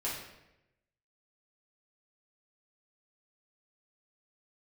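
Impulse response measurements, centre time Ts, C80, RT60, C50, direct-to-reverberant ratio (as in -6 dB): 50 ms, 5.5 dB, 0.90 s, 2.5 dB, -7.5 dB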